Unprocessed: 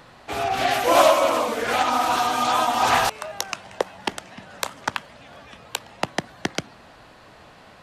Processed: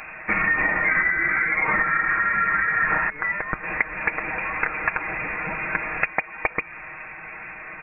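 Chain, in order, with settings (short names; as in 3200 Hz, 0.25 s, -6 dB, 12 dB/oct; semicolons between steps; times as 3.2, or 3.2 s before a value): 3.63–6.05 delta modulation 32 kbps, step -32 dBFS; comb 6.6 ms, depth 72%; compressor 12:1, threshold -27 dBFS, peak gain reduction 18.5 dB; inverted band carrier 2600 Hz; gain +9 dB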